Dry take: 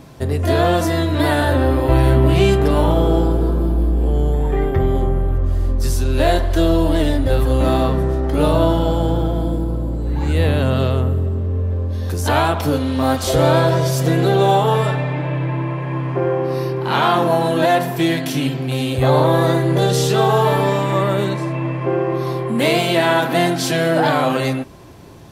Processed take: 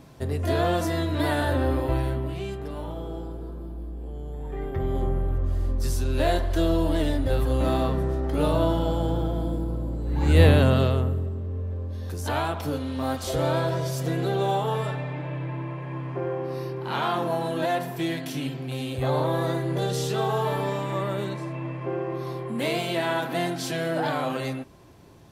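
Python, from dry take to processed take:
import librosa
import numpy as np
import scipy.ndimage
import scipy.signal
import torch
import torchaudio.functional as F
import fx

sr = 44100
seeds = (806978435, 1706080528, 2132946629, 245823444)

y = fx.gain(x, sr, db=fx.line((1.78, -8.0), (2.39, -19.0), (4.24, -19.0), (5.05, -7.5), (10.07, -7.5), (10.41, 1.5), (11.35, -10.5)))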